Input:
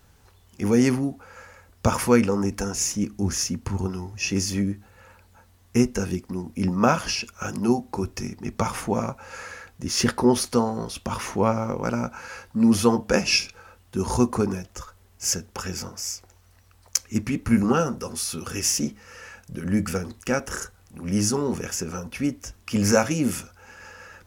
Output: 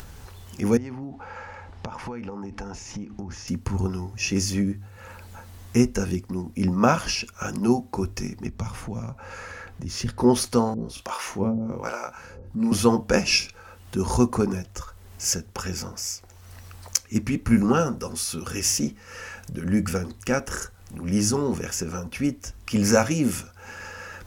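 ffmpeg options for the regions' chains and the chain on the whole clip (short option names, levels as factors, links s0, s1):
-filter_complex "[0:a]asettb=1/sr,asplit=3[s0][s1][s2];[s0]atrim=end=0.774[s3];[s1]atrim=start=0.77:end=3.48,asetpts=PTS-STARTPTS,afade=t=in:d=0.004:c=qsin,afade=t=out:st=2.706:d=0.004:c=qsin,equalizer=f=850:w=5.7:g=10.5,acompressor=threshold=0.0282:ratio=20:attack=3.2:release=140:knee=1:detection=peak,lowpass=3900[s4];[s2]atrim=start=3.476[s5];[s3][s4]acrossfade=d=0.004:c1=hsin:c2=qsin[s6];[s6][s5]acrossfade=d=0.004:c1=qsin:c2=hsin,asettb=1/sr,asplit=3[s7][s8][s9];[s7]atrim=end=8.474[s10];[s8]atrim=start=8.47:end=10.2,asetpts=PTS-STARTPTS,afade=t=in:d=0.004:c=qsin,afade=t=out:st=1.726:d=0.004:c=qsin,acrossover=split=160|3000[s11][s12][s13];[s12]acompressor=threshold=0.01:ratio=3:attack=3.2:release=140:knee=2.83:detection=peak[s14];[s11][s14][s13]amix=inputs=3:normalize=0,highshelf=f=3500:g=-11[s15];[s9]atrim=start=10.196[s16];[s10][s15]acrossfade=d=0.004:c1=hsin:c2=qsin[s17];[s17][s16]acrossfade=d=0.004:c1=qsin:c2=hsin,asettb=1/sr,asplit=3[s18][s19][s20];[s18]atrim=end=10.744[s21];[s19]atrim=start=10.74:end=12.72,asetpts=PTS-STARTPTS,afade=t=in:d=0.004:c=qsin,afade=t=out:st=1.976:d=0.004:c=qsin,asplit=2[s22][s23];[s23]adelay=31,volume=0.501[s24];[s22][s24]amix=inputs=2:normalize=0,atrim=end_sample=87318,acrossover=split=450[s25][s26];[s25]aeval=exprs='val(0)*(1-1/2+1/2*cos(2*PI*1.2*n/s))':c=same[s27];[s26]aeval=exprs='val(0)*(1-1/2-1/2*cos(2*PI*1.2*n/s))':c=same[s28];[s27][s28]amix=inputs=2:normalize=0[s29];[s20]atrim=start=12.716[s30];[s21][s29]acrossfade=d=0.004:c1=hsin:c2=qsin[s31];[s31][s30]acrossfade=d=0.004:c1=qsin:c2=hsin,lowshelf=f=71:g=7.5,bandreject=f=50.15:t=h:w=4,bandreject=f=100.3:t=h:w=4,acompressor=mode=upward:threshold=0.0282:ratio=2.5"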